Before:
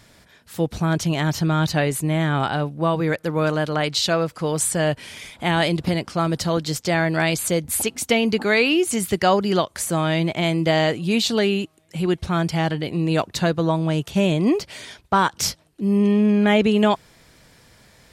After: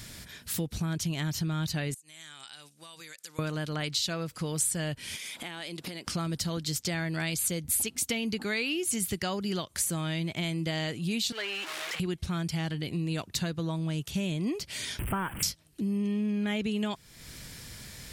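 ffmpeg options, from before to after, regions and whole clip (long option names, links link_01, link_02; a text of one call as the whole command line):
ffmpeg -i in.wav -filter_complex "[0:a]asettb=1/sr,asplit=3[link_01][link_02][link_03];[link_01]atrim=end=1.944[link_04];[link_02]atrim=start=1.94:end=3.39,asetpts=PTS-STARTPTS,afade=type=in:duration=0.004:curve=qsin,afade=type=out:start_time=1.446:duration=0.004:curve=qsin,bandpass=frequency=7300:width_type=q:width=1.6,acompressor=threshold=-46dB:ratio=10:attack=3.2:release=140:knee=1:detection=peak[link_05];[link_03]atrim=start=3.386[link_06];[link_04][link_05]acrossfade=duration=0.004:curve1=hsin:curve2=qsin[link_07];[link_07][link_06]acrossfade=duration=0.004:curve1=qsin:curve2=hsin,asettb=1/sr,asplit=3[link_08][link_09][link_10];[link_08]atrim=end=5.164[link_11];[link_09]atrim=start=5.16:end=6.07,asetpts=PTS-STARTPTS,afade=type=in:duration=0.004:curve=qsin,afade=type=out:start_time=0.906:duration=0.004:curve=qsin,highpass=300,acompressor=threshold=-43dB:ratio=3:attack=3.2:release=140:knee=1:detection=peak[link_12];[link_10]atrim=start=6.066[link_13];[link_11][link_12]acrossfade=duration=0.004:curve1=hsin:curve2=qsin[link_14];[link_14][link_13]acrossfade=duration=0.004:curve1=qsin:curve2=hsin,asettb=1/sr,asplit=3[link_15][link_16][link_17];[link_15]atrim=end=11.324[link_18];[link_16]atrim=start=11.32:end=12,asetpts=PTS-STARTPTS,afade=type=in:duration=0.004:curve=qsin,afade=type=out:start_time=0.676:duration=0.004:curve=qsin,aeval=exprs='val(0)+0.5*0.0794*sgn(val(0))':channel_layout=same,highpass=710,lowpass=2100,aemphasis=mode=production:type=bsi[link_19];[link_17]atrim=start=11.996[link_20];[link_18][link_19]acrossfade=duration=0.004:curve1=hsin:curve2=qsin[link_21];[link_21][link_20]acrossfade=duration=0.004:curve1=qsin:curve2=hsin,asettb=1/sr,asplit=3[link_22][link_23][link_24];[link_22]atrim=end=14.994[link_25];[link_23]atrim=start=14.99:end=15.43,asetpts=PTS-STARTPTS,afade=type=in:duration=0.004:curve=qsin,afade=type=out:start_time=0.436:duration=0.004:curve=qsin,aeval=exprs='val(0)+0.5*0.0473*sgn(val(0))':channel_layout=same,asuperstop=centerf=5100:order=12:qfactor=0.96,highshelf=frequency=6200:gain=-8.5[link_26];[link_24]atrim=start=15.426[link_27];[link_25][link_26]acrossfade=duration=0.004:curve1=hsin:curve2=qsin[link_28];[link_28][link_27]acrossfade=duration=0.004:curve1=qsin:curve2=hsin,equalizer=frequency=700:width=0.53:gain=-10.5,acompressor=threshold=-43dB:ratio=3,highshelf=frequency=8300:gain=5,volume=8.5dB" out.wav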